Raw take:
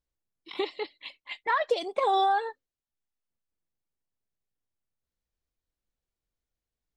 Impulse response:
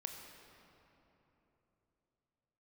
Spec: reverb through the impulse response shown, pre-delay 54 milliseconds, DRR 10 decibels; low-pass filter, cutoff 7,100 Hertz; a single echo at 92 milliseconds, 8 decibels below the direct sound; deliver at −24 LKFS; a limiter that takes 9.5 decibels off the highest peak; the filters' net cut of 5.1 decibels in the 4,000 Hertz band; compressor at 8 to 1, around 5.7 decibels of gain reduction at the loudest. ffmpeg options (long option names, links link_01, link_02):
-filter_complex "[0:a]lowpass=7100,equalizer=frequency=4000:width_type=o:gain=-6,acompressor=threshold=-27dB:ratio=8,alimiter=level_in=3.5dB:limit=-24dB:level=0:latency=1,volume=-3.5dB,aecho=1:1:92:0.398,asplit=2[link_01][link_02];[1:a]atrim=start_sample=2205,adelay=54[link_03];[link_02][link_03]afir=irnorm=-1:irlink=0,volume=-8dB[link_04];[link_01][link_04]amix=inputs=2:normalize=0,volume=12.5dB"